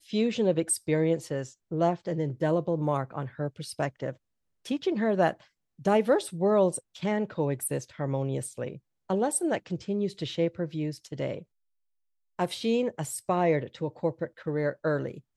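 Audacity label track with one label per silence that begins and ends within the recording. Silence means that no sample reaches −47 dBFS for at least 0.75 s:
11.430000	12.390000	silence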